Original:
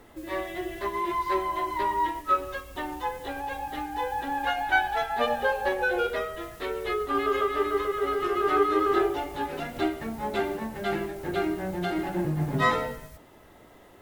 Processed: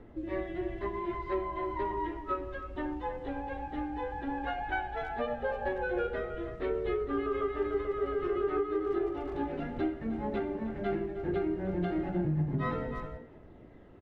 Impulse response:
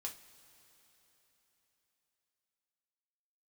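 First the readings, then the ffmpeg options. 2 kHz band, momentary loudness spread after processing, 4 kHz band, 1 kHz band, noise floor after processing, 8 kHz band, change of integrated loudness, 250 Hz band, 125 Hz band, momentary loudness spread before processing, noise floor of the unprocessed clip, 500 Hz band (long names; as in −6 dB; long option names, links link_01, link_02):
−10.5 dB, 6 LU, −15.0 dB, −10.0 dB, −52 dBFS, below −25 dB, −6.0 dB, −2.0 dB, −1.0 dB, 9 LU, −53 dBFS, −4.0 dB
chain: -filter_complex "[0:a]lowpass=1500,aphaser=in_gain=1:out_gain=1:delay=4:decay=0.22:speed=0.15:type=triangular,equalizer=frequency=1000:width_type=o:width=1.9:gain=-11,asplit=2[link_01][link_02];[link_02]adelay=310,highpass=300,lowpass=3400,asoftclip=type=hard:threshold=-24.5dB,volume=-11dB[link_03];[link_01][link_03]amix=inputs=2:normalize=0,alimiter=level_in=0.5dB:limit=-24dB:level=0:latency=1:release=461,volume=-0.5dB,volume=2.5dB"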